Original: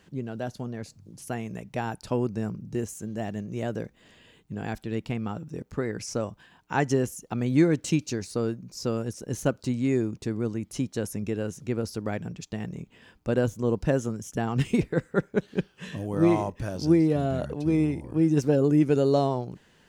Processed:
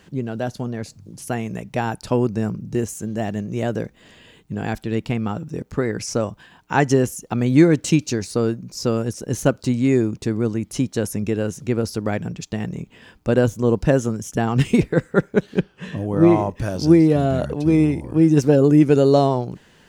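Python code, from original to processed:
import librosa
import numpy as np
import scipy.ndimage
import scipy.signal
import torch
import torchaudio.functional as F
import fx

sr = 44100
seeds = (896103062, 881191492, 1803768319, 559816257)

y = fx.high_shelf(x, sr, hz=2900.0, db=-10.0, at=(15.59, 16.5))
y = F.gain(torch.from_numpy(y), 7.5).numpy()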